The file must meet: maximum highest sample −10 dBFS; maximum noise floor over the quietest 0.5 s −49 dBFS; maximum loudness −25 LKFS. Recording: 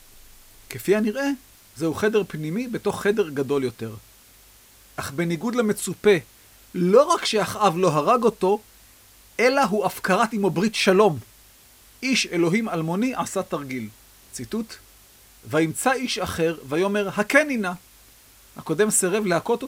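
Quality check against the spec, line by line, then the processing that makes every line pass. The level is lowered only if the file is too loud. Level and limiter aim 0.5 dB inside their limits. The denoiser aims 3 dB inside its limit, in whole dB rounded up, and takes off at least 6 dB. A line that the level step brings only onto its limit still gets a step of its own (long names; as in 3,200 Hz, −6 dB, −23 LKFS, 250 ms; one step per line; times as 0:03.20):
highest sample −2.0 dBFS: out of spec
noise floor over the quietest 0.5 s −52 dBFS: in spec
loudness −22.5 LKFS: out of spec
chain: level −3 dB
brickwall limiter −10.5 dBFS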